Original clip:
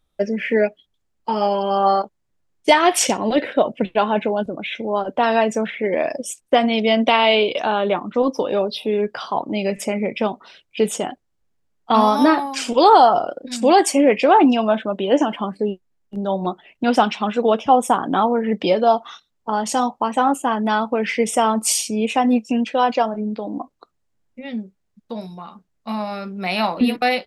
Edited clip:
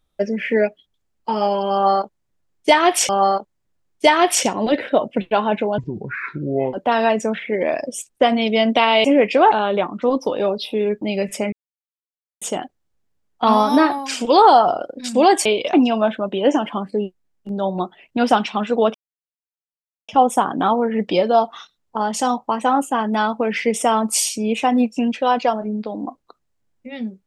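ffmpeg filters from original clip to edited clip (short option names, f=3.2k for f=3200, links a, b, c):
-filter_complex "[0:a]asplit=12[a][b][c][d][e][f][g][h][i][j][k][l];[a]atrim=end=3.092[m];[b]atrim=start=1.728:end=4.424[n];[c]atrim=start=4.42:end=5.05,asetpts=PTS-STARTPTS,asetrate=29106,aresample=44100,atrim=end_sample=42095,asetpts=PTS-STARTPTS[o];[d]atrim=start=5.046:end=7.362[p];[e]atrim=start=13.928:end=14.402[q];[f]atrim=start=7.638:end=9.142[r];[g]atrim=start=9.488:end=10,asetpts=PTS-STARTPTS,afade=t=out:st=0.508:d=0.004:c=hsin[s];[h]atrim=start=10:end=10.89,asetpts=PTS-STARTPTS,volume=0[t];[i]atrim=start=10.89:end=13.932,asetpts=PTS-STARTPTS,afade=t=in:d=0.004:c=hsin[u];[j]atrim=start=7.358:end=7.642[v];[k]atrim=start=14.398:end=17.61,asetpts=PTS-STARTPTS,afade=t=out:st=3.208:d=0.004:c=hsin,apad=pad_dur=1.14[w];[l]atrim=start=17.61,asetpts=PTS-STARTPTS,afade=t=in:d=0.004:c=hsin[x];[m][n]acrossfade=d=0.004:c1=hsin:c2=hsin[y];[y][o]acrossfade=d=0.004:c1=hsin:c2=hsin[z];[z][p]acrossfade=d=0.004:c1=hsin:c2=hsin[aa];[aa][q]acrossfade=d=0.004:c1=hsin:c2=hsin[ab];[ab][r]acrossfade=d=0.004:c1=hsin:c2=hsin[ac];[s][t][u]concat=n=3:v=0:a=1[ad];[ac][ad]acrossfade=d=0.004:c1=hsin:c2=hsin[ae];[ae][v]acrossfade=d=0.004:c1=hsin:c2=hsin[af];[w][x]concat=n=2:v=0:a=1[ag];[af][ag]acrossfade=d=0.004:c1=hsin:c2=hsin"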